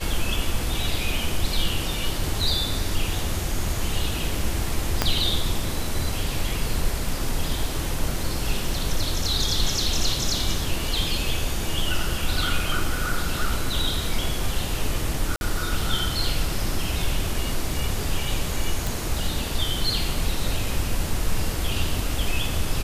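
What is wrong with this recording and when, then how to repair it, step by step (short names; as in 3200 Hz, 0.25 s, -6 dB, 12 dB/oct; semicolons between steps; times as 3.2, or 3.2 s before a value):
5.02 pop -3 dBFS
15.36–15.41 gap 51 ms
18.87 pop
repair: de-click; interpolate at 15.36, 51 ms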